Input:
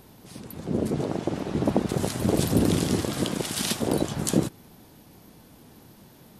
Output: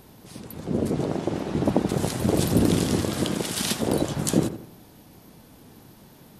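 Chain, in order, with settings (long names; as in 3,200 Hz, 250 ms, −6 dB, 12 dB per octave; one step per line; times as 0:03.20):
feedback echo with a low-pass in the loop 83 ms, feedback 42%, low-pass 1,900 Hz, level −10 dB
level +1 dB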